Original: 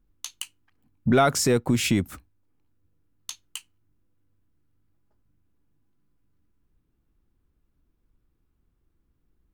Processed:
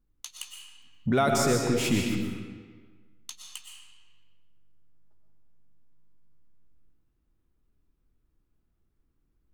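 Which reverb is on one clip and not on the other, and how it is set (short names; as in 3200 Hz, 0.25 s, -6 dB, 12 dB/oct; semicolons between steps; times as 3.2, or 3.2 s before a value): digital reverb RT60 1.5 s, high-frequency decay 0.8×, pre-delay 80 ms, DRR 1 dB; gain -5 dB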